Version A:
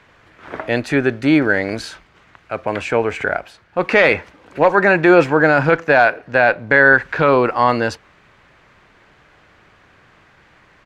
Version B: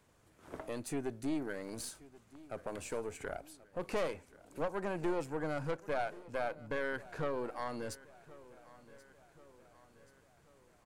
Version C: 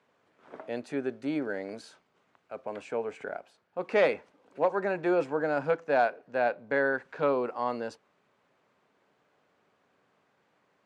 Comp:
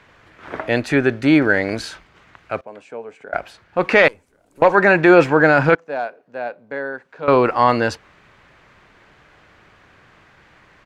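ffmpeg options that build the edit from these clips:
-filter_complex "[2:a]asplit=2[s0][s1];[0:a]asplit=4[s2][s3][s4][s5];[s2]atrim=end=2.612[s6];[s0]atrim=start=2.608:end=3.332[s7];[s3]atrim=start=3.328:end=4.082[s8];[1:a]atrim=start=4.078:end=4.622[s9];[s4]atrim=start=4.618:end=5.752[s10];[s1]atrim=start=5.748:end=7.282[s11];[s5]atrim=start=7.278[s12];[s6][s7]acrossfade=d=0.004:c1=hsin:c2=hsin[s13];[s13][s8]acrossfade=d=0.004:c1=hsin:c2=hsin[s14];[s14][s9]acrossfade=d=0.004:c1=hsin:c2=hsin[s15];[s15][s10]acrossfade=d=0.004:c1=hsin:c2=hsin[s16];[s16][s11]acrossfade=d=0.004:c1=hsin:c2=hsin[s17];[s17][s12]acrossfade=d=0.004:c1=hsin:c2=hsin"

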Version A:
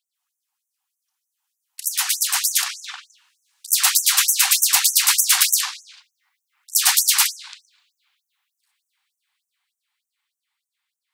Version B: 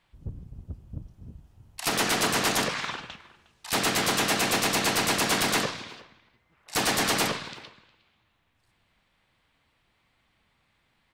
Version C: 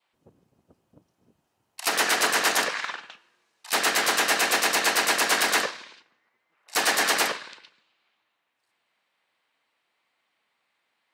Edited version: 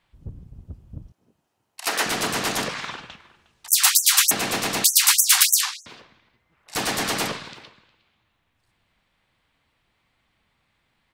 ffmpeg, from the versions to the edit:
-filter_complex "[0:a]asplit=2[s0][s1];[1:a]asplit=4[s2][s3][s4][s5];[s2]atrim=end=1.122[s6];[2:a]atrim=start=1.118:end=2.062[s7];[s3]atrim=start=2.058:end=3.682[s8];[s0]atrim=start=3.678:end=4.312[s9];[s4]atrim=start=4.308:end=4.842[s10];[s1]atrim=start=4.838:end=5.862[s11];[s5]atrim=start=5.858[s12];[s6][s7]acrossfade=d=0.004:c1=hsin:c2=hsin[s13];[s13][s8]acrossfade=d=0.004:c1=hsin:c2=hsin[s14];[s14][s9]acrossfade=d=0.004:c1=hsin:c2=hsin[s15];[s15][s10]acrossfade=d=0.004:c1=hsin:c2=hsin[s16];[s16][s11]acrossfade=d=0.004:c1=hsin:c2=hsin[s17];[s17][s12]acrossfade=d=0.004:c1=hsin:c2=hsin"

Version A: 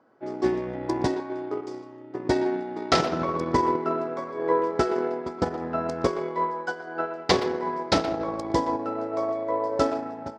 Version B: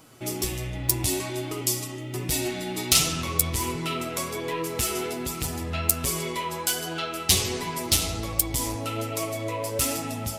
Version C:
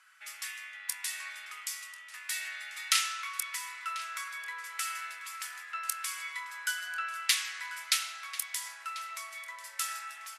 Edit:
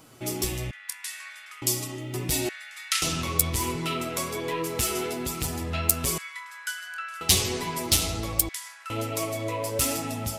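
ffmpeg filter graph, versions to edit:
-filter_complex "[2:a]asplit=4[s0][s1][s2][s3];[1:a]asplit=5[s4][s5][s6][s7][s8];[s4]atrim=end=0.712[s9];[s0]atrim=start=0.708:end=1.622[s10];[s5]atrim=start=1.618:end=2.492[s11];[s1]atrim=start=2.488:end=3.022[s12];[s6]atrim=start=3.018:end=6.182[s13];[s2]atrim=start=6.178:end=7.212[s14];[s7]atrim=start=7.208:end=8.492[s15];[s3]atrim=start=8.488:end=8.902[s16];[s8]atrim=start=8.898[s17];[s9][s10]acrossfade=d=0.004:c1=hsin:c2=hsin[s18];[s18][s11]acrossfade=d=0.004:c1=hsin:c2=hsin[s19];[s19][s12]acrossfade=d=0.004:c1=hsin:c2=hsin[s20];[s20][s13]acrossfade=d=0.004:c1=hsin:c2=hsin[s21];[s21][s14]acrossfade=d=0.004:c1=hsin:c2=hsin[s22];[s22][s15]acrossfade=d=0.004:c1=hsin:c2=hsin[s23];[s23][s16]acrossfade=d=0.004:c1=hsin:c2=hsin[s24];[s24][s17]acrossfade=d=0.004:c1=hsin:c2=hsin"

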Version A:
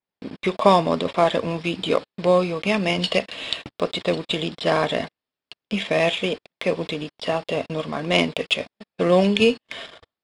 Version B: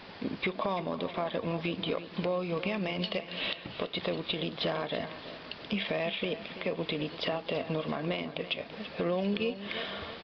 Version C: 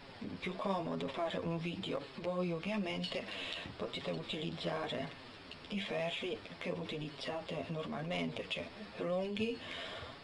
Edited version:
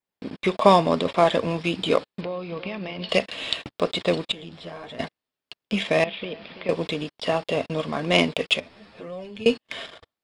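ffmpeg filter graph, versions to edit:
-filter_complex "[1:a]asplit=2[s0][s1];[2:a]asplit=2[s2][s3];[0:a]asplit=5[s4][s5][s6][s7][s8];[s4]atrim=end=2.212[s9];[s0]atrim=start=2.208:end=3.092[s10];[s5]atrim=start=3.088:end=4.322[s11];[s2]atrim=start=4.318:end=4.992[s12];[s6]atrim=start=4.988:end=6.042[s13];[s1]atrim=start=6.038:end=6.692[s14];[s7]atrim=start=6.688:end=8.602[s15];[s3]atrim=start=8.598:end=9.462[s16];[s8]atrim=start=9.458[s17];[s9][s10]acrossfade=d=0.004:c1=hsin:c2=hsin[s18];[s18][s11]acrossfade=d=0.004:c1=hsin:c2=hsin[s19];[s19][s12]acrossfade=d=0.004:c1=hsin:c2=hsin[s20];[s20][s13]acrossfade=d=0.004:c1=hsin:c2=hsin[s21];[s21][s14]acrossfade=d=0.004:c1=hsin:c2=hsin[s22];[s22][s15]acrossfade=d=0.004:c1=hsin:c2=hsin[s23];[s23][s16]acrossfade=d=0.004:c1=hsin:c2=hsin[s24];[s24][s17]acrossfade=d=0.004:c1=hsin:c2=hsin"

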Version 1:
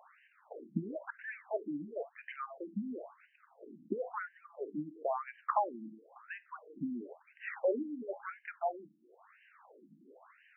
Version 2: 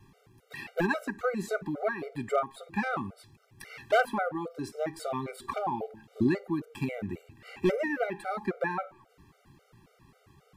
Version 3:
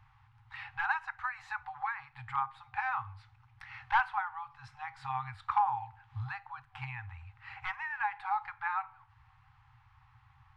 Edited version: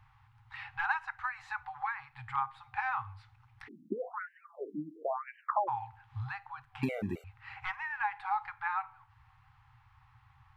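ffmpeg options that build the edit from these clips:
-filter_complex "[2:a]asplit=3[s0][s1][s2];[s0]atrim=end=3.69[s3];[0:a]atrim=start=3.67:end=5.69[s4];[s1]atrim=start=5.67:end=6.832[s5];[1:a]atrim=start=6.828:end=7.242[s6];[s2]atrim=start=7.238[s7];[s3][s4]acrossfade=d=0.02:c1=tri:c2=tri[s8];[s8][s5]acrossfade=d=0.02:c1=tri:c2=tri[s9];[s9][s6]acrossfade=d=0.004:c1=hsin:c2=hsin[s10];[s10][s7]acrossfade=d=0.004:c1=hsin:c2=hsin"

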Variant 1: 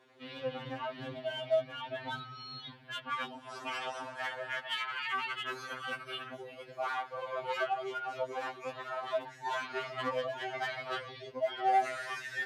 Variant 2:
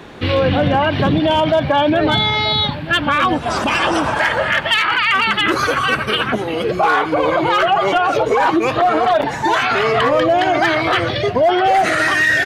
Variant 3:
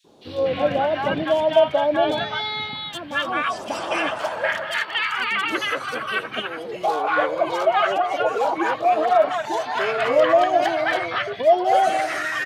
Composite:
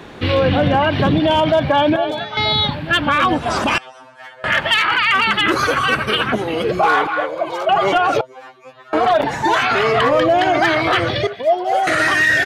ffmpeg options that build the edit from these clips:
-filter_complex "[2:a]asplit=3[s0][s1][s2];[0:a]asplit=2[s3][s4];[1:a]asplit=6[s5][s6][s7][s8][s9][s10];[s5]atrim=end=1.962[s11];[s0]atrim=start=1.958:end=2.372[s12];[s6]atrim=start=2.368:end=3.782[s13];[s3]atrim=start=3.778:end=4.442[s14];[s7]atrim=start=4.438:end=7.072[s15];[s1]atrim=start=7.068:end=7.692[s16];[s8]atrim=start=7.688:end=8.212[s17];[s4]atrim=start=8.208:end=8.932[s18];[s9]atrim=start=8.928:end=11.272[s19];[s2]atrim=start=11.268:end=11.872[s20];[s10]atrim=start=11.868[s21];[s11][s12]acrossfade=d=0.004:c1=hsin:c2=hsin[s22];[s22][s13]acrossfade=d=0.004:c1=hsin:c2=hsin[s23];[s23][s14]acrossfade=d=0.004:c1=hsin:c2=hsin[s24];[s24][s15]acrossfade=d=0.004:c1=hsin:c2=hsin[s25];[s25][s16]acrossfade=d=0.004:c1=hsin:c2=hsin[s26];[s26][s17]acrossfade=d=0.004:c1=hsin:c2=hsin[s27];[s27][s18]acrossfade=d=0.004:c1=hsin:c2=hsin[s28];[s28][s19]acrossfade=d=0.004:c1=hsin:c2=hsin[s29];[s29][s20]acrossfade=d=0.004:c1=hsin:c2=hsin[s30];[s30][s21]acrossfade=d=0.004:c1=hsin:c2=hsin"

